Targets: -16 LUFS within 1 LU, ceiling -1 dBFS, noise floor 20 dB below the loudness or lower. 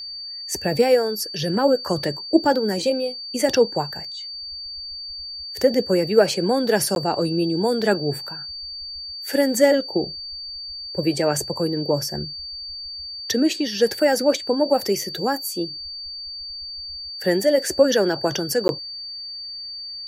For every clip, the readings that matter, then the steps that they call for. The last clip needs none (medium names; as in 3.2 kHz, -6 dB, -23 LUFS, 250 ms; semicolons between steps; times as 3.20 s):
dropouts 2; longest dropout 11 ms; steady tone 4.6 kHz; tone level -31 dBFS; loudness -22.5 LUFS; peak level -3.0 dBFS; loudness target -16.0 LUFS
-> interpolate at 6.95/18.68 s, 11 ms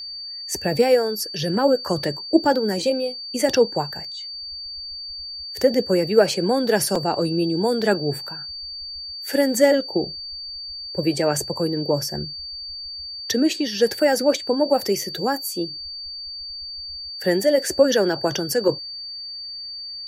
dropouts 0; steady tone 4.6 kHz; tone level -31 dBFS
-> band-stop 4.6 kHz, Q 30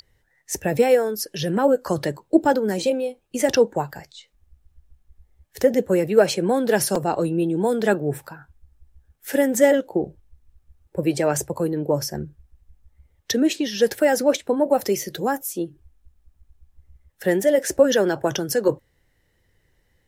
steady tone not found; loudness -21.5 LUFS; peak level -3.0 dBFS; loudness target -16.0 LUFS
-> trim +5.5 dB; peak limiter -1 dBFS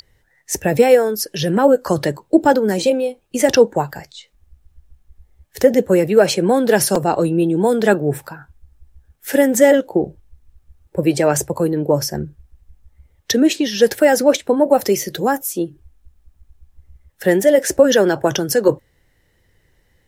loudness -16.5 LUFS; peak level -1.0 dBFS; noise floor -61 dBFS